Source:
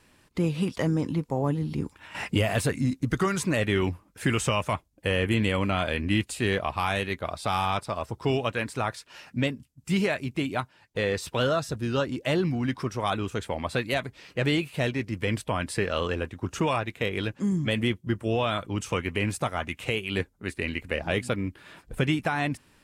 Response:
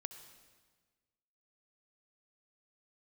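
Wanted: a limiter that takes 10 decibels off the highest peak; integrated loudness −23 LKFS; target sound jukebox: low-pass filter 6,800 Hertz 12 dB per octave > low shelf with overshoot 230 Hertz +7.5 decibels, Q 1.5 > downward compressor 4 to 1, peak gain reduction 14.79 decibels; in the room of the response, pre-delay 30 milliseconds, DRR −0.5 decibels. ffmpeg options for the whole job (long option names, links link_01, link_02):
-filter_complex "[0:a]alimiter=limit=-21dB:level=0:latency=1,asplit=2[link_01][link_02];[1:a]atrim=start_sample=2205,adelay=30[link_03];[link_02][link_03]afir=irnorm=-1:irlink=0,volume=4dB[link_04];[link_01][link_04]amix=inputs=2:normalize=0,lowpass=6800,lowshelf=frequency=230:width_type=q:width=1.5:gain=7.5,acompressor=threshold=-30dB:ratio=4,volume=10dB"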